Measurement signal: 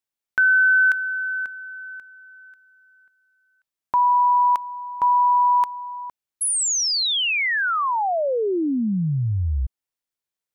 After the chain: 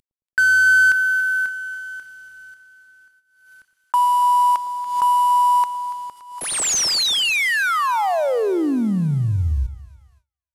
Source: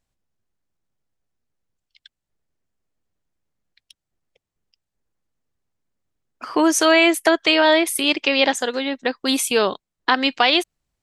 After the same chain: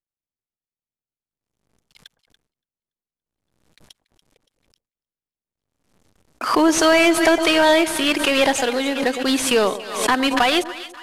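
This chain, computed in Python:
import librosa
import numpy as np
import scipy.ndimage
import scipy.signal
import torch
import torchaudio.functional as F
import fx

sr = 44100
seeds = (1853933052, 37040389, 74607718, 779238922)

p1 = fx.cvsd(x, sr, bps=64000)
p2 = np.clip(p1, -10.0 ** (-21.0 / 20.0), 10.0 ** (-21.0 / 20.0))
p3 = p1 + F.gain(torch.from_numpy(p2), -9.0).numpy()
p4 = fx.echo_split(p3, sr, split_hz=1000.0, low_ms=110, high_ms=285, feedback_pct=52, wet_db=-14)
p5 = fx.gate_hold(p4, sr, open_db=-44.0, close_db=-48.0, hold_ms=104.0, range_db=-26, attack_ms=0.21, release_ms=93.0)
y = fx.pre_swell(p5, sr, db_per_s=73.0)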